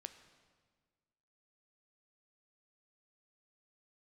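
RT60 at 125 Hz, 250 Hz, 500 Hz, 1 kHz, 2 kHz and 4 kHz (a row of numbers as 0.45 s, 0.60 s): 1.8 s, 1.8 s, 1.7 s, 1.5 s, 1.4 s, 1.3 s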